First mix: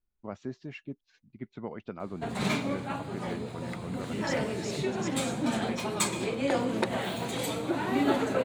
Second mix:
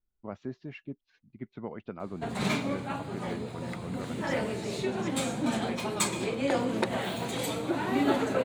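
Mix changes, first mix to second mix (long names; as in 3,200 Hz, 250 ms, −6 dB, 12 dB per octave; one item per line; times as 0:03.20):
first voice: add high-frequency loss of the air 130 metres
second voice −8.5 dB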